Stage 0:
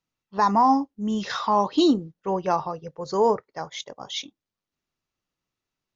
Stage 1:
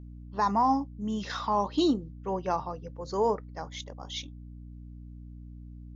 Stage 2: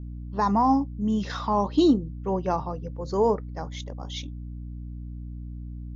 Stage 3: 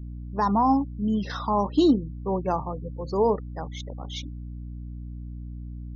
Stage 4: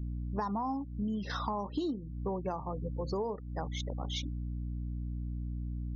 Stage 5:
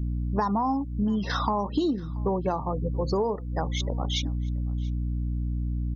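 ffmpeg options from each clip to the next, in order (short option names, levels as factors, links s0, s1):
-af "aeval=exprs='val(0)+0.0141*(sin(2*PI*60*n/s)+sin(2*PI*2*60*n/s)/2+sin(2*PI*3*60*n/s)/3+sin(2*PI*4*60*n/s)/4+sin(2*PI*5*60*n/s)/5)':c=same,volume=0.501"
-af "lowshelf=f=490:g=8.5"
-af "afftfilt=real='re*gte(hypot(re,im),0.01)':imag='im*gte(hypot(re,im),0.01)':win_size=1024:overlap=0.75"
-af "acompressor=threshold=0.0282:ratio=12"
-af "aecho=1:1:681:0.0631,volume=2.66"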